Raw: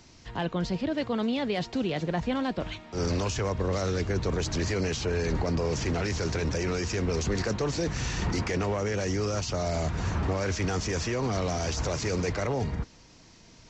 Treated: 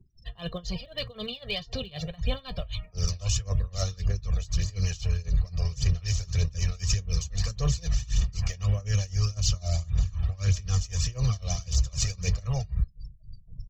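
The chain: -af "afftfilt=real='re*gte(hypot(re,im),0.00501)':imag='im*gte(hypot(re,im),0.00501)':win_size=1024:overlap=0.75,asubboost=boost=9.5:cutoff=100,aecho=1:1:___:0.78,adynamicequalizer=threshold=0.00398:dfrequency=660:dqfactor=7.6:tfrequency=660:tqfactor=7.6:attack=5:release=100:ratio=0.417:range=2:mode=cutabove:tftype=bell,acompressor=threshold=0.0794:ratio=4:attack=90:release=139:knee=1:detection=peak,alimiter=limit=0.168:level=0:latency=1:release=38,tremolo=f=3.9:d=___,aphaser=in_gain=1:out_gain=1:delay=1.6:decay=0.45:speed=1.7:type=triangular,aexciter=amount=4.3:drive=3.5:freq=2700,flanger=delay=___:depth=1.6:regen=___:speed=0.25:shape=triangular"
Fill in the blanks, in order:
1.7, 0.94, 5.6, -65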